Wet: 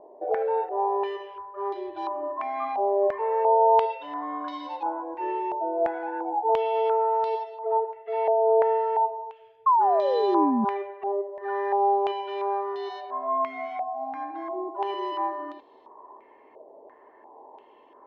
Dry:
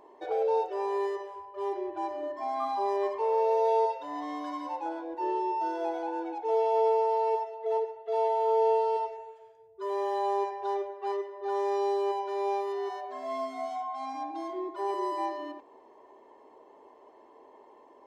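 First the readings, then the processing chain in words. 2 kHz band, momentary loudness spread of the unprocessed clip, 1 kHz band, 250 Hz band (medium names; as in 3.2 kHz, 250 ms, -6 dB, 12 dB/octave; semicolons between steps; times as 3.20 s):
+5.0 dB, 11 LU, +5.5 dB, +6.0 dB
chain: painted sound fall, 9.66–10.65 s, 210–1100 Hz -24 dBFS; step-sequenced low-pass 2.9 Hz 640–3800 Hz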